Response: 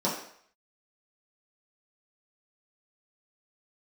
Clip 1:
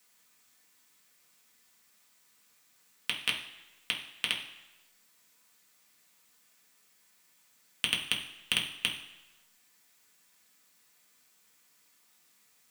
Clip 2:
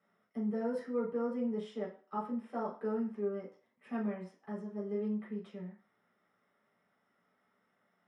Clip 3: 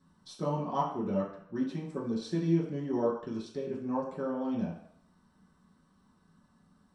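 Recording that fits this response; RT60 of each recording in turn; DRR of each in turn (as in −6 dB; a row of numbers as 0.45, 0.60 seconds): 3; 1.0, 0.40, 0.60 seconds; −2.0, −6.0, −8.0 decibels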